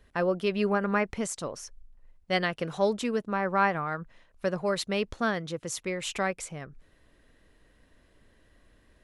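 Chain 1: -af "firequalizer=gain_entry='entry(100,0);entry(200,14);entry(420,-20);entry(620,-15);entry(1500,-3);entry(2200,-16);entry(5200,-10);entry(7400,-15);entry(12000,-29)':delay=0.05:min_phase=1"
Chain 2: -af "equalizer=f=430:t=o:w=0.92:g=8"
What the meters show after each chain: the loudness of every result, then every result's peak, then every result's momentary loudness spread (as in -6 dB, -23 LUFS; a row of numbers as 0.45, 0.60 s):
-24.5, -26.0 LUFS; -11.5, -9.5 dBFS; 15, 12 LU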